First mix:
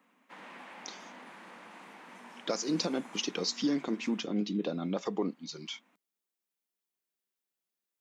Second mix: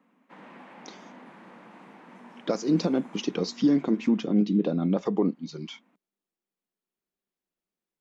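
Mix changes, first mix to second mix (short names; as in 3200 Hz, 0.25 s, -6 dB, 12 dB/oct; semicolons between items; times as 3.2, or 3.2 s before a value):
speech +3.0 dB; master: add tilt -3 dB/oct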